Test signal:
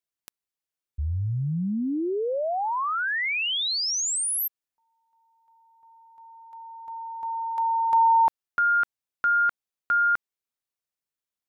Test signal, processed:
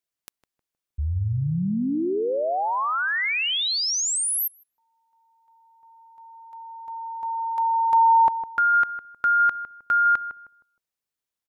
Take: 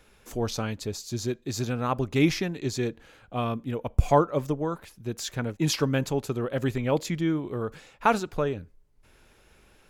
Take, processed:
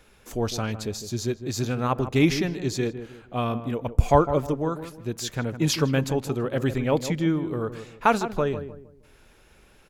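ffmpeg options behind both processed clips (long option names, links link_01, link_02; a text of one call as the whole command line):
ffmpeg -i in.wav -filter_complex "[0:a]asplit=2[link_01][link_02];[link_02]adelay=156,lowpass=frequency=1100:poles=1,volume=-10dB,asplit=2[link_03][link_04];[link_04]adelay=156,lowpass=frequency=1100:poles=1,volume=0.35,asplit=2[link_05][link_06];[link_06]adelay=156,lowpass=frequency=1100:poles=1,volume=0.35,asplit=2[link_07][link_08];[link_08]adelay=156,lowpass=frequency=1100:poles=1,volume=0.35[link_09];[link_01][link_03][link_05][link_07][link_09]amix=inputs=5:normalize=0,volume=2dB" out.wav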